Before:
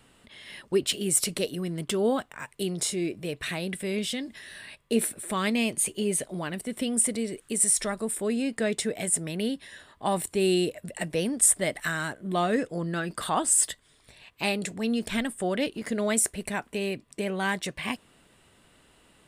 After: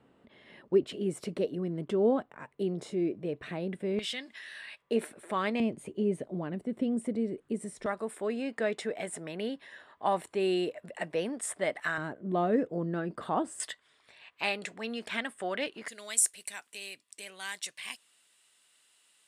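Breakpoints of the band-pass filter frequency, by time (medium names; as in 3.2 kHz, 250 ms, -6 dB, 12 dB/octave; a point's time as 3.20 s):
band-pass filter, Q 0.63
370 Hz
from 3.99 s 1.9 kHz
from 4.82 s 770 Hz
from 5.60 s 280 Hz
from 7.86 s 920 Hz
from 11.98 s 360 Hz
from 13.60 s 1.5 kHz
from 15.88 s 7.4 kHz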